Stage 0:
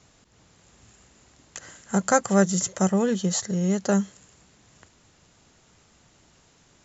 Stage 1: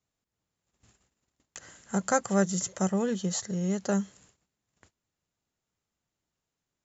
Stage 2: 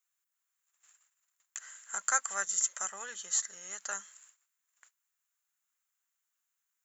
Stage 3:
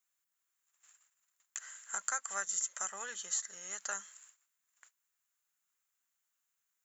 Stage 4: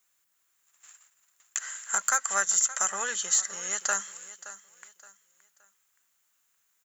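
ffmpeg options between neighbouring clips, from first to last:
ffmpeg -i in.wav -af "agate=range=-22dB:threshold=-53dB:ratio=16:detection=peak,volume=-5.5dB" out.wav
ffmpeg -i in.wav -af "highpass=frequency=1400:width_type=q:width=1.7,aexciter=amount=4.5:drive=3.9:freq=6900,volume=-4dB" out.wav
ffmpeg -i in.wav -af "acompressor=threshold=-32dB:ratio=4" out.wav
ffmpeg -i in.wav -af "aecho=1:1:571|1142|1713:0.15|0.0479|0.0153,aeval=exprs='0.168*sin(PI/2*1.58*val(0)/0.168)':channel_layout=same,volume=3.5dB" out.wav

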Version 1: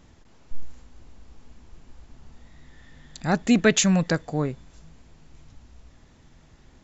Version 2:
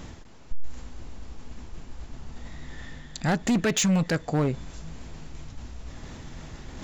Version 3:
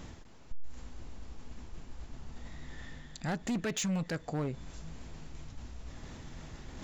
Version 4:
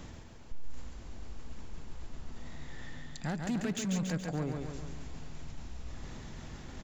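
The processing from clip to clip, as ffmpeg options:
ffmpeg -i in.wav -af "alimiter=limit=-15.5dB:level=0:latency=1:release=103,areverse,acompressor=mode=upward:threshold=-34dB:ratio=2.5,areverse,volume=23dB,asoftclip=hard,volume=-23dB,volume=4.5dB" out.wav
ffmpeg -i in.wav -af "alimiter=limit=-23dB:level=0:latency=1:release=187,volume=-5.5dB" out.wav
ffmpeg -i in.wav -filter_complex "[0:a]asplit=2[link_01][link_02];[link_02]aecho=0:1:140|280|420|560|700|840|980:0.531|0.276|0.144|0.0746|0.0388|0.0202|0.0105[link_03];[link_01][link_03]amix=inputs=2:normalize=0,acrossover=split=290[link_04][link_05];[link_05]acompressor=threshold=-38dB:ratio=2.5[link_06];[link_04][link_06]amix=inputs=2:normalize=0" out.wav

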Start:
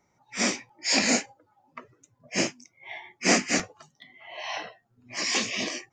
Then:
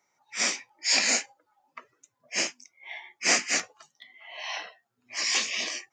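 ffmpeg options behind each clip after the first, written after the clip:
ffmpeg -i in.wav -af "highpass=frequency=1300:poles=1,volume=1.5dB" out.wav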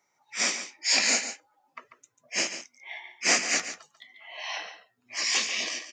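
ffmpeg -i in.wav -af "aecho=1:1:142:0.282" out.wav

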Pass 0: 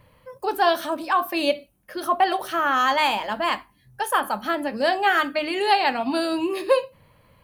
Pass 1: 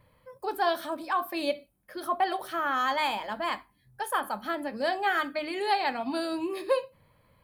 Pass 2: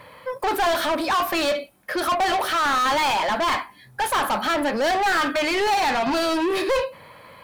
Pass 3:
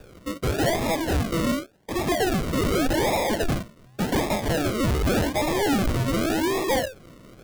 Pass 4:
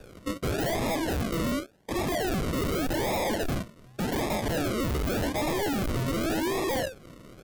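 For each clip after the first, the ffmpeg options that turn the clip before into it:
ffmpeg -i in.wav -af "equalizer=frequency=6100:width=6.6:gain=-6,bandreject=frequency=2800:width=10,volume=-7dB" out.wav
ffmpeg -i in.wav -filter_complex "[0:a]asplit=2[link_01][link_02];[link_02]highpass=frequency=720:poles=1,volume=30dB,asoftclip=type=tanh:threshold=-14.5dB[link_03];[link_01][link_03]amix=inputs=2:normalize=0,lowpass=frequency=4100:poles=1,volume=-6dB" out.wav
ffmpeg -i in.wav -af "acrusher=samples=42:mix=1:aa=0.000001:lfo=1:lforange=25.2:lforate=0.87,volume=-1.5dB" out.wav
ffmpeg -i in.wav -af "acrusher=bits=2:mode=log:mix=0:aa=0.000001,aresample=32000,aresample=44100,aeval=exprs='0.0891*(abs(mod(val(0)/0.0891+3,4)-2)-1)':channel_layout=same,volume=-1.5dB" out.wav

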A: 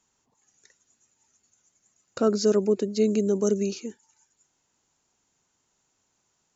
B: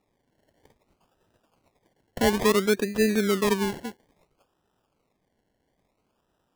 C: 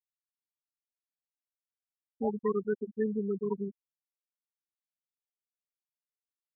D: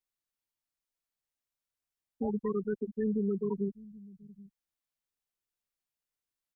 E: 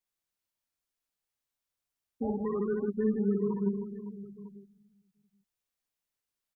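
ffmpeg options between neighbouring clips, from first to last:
ffmpeg -i in.wav -af "acrusher=samples=28:mix=1:aa=0.000001:lfo=1:lforange=16.8:lforate=0.59" out.wav
ffmpeg -i in.wav -af "afftfilt=real='re*gte(hypot(re,im),0.316)':imag='im*gte(hypot(re,im),0.316)':win_size=1024:overlap=0.75,volume=-7.5dB" out.wav
ffmpeg -i in.wav -filter_complex "[0:a]lowshelf=frequency=68:gain=11,acrossover=split=180[link_01][link_02];[link_01]aecho=1:1:779:0.299[link_03];[link_02]alimiter=level_in=5.5dB:limit=-24dB:level=0:latency=1:release=27,volume=-5.5dB[link_04];[link_03][link_04]amix=inputs=2:normalize=0,volume=3dB" out.wav
ffmpeg -i in.wav -af "aecho=1:1:60|156|309.6|555.4|948.6:0.631|0.398|0.251|0.158|0.1" out.wav

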